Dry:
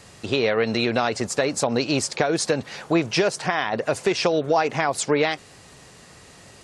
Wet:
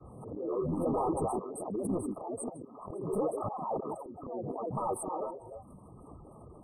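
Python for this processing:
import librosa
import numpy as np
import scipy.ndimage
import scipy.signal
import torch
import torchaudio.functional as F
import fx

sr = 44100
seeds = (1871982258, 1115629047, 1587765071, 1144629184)

p1 = fx.envelope_sharpen(x, sr, power=1.5)
p2 = fx.dereverb_blind(p1, sr, rt60_s=1.2)
p3 = fx.level_steps(p2, sr, step_db=14)
p4 = p2 + F.gain(torch.from_numpy(p3), 0.5).numpy()
p5 = fx.auto_swell(p4, sr, attack_ms=629.0)
p6 = p5 + fx.echo_stepped(p5, sr, ms=137, hz=320.0, octaves=1.4, feedback_pct=70, wet_db=-5.0, dry=0)
p7 = np.clip(10.0 ** (24.0 / 20.0) * p6, -1.0, 1.0) / 10.0 ** (24.0 / 20.0)
p8 = fx.granulator(p7, sr, seeds[0], grain_ms=107.0, per_s=32.0, spray_ms=20.0, spread_st=7)
p9 = fx.brickwall_bandstop(p8, sr, low_hz=1300.0, high_hz=8100.0)
p10 = fx.air_absorb(p9, sr, metres=79.0)
y = fx.pre_swell(p10, sr, db_per_s=53.0)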